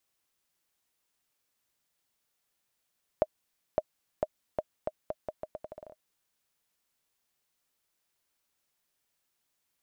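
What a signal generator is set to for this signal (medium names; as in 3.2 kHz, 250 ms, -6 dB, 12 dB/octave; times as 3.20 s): bouncing ball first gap 0.56 s, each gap 0.8, 620 Hz, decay 43 ms -12 dBFS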